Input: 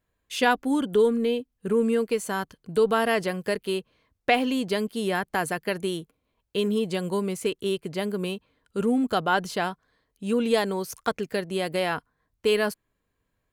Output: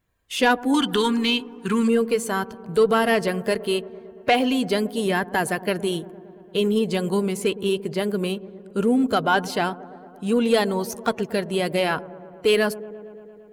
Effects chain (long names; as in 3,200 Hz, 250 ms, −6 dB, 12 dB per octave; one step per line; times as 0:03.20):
spectral magnitudes quantised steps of 15 dB
0:00.74–0:01.88: drawn EQ curve 360 Hz 0 dB, 620 Hz −23 dB, 940 Hz +7 dB, 5,300 Hz +14 dB, 10,000 Hz +3 dB
soft clipping −11.5 dBFS, distortion −25 dB
delay with a low-pass on its return 114 ms, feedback 77%, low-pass 870 Hz, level −17 dB
level +4.5 dB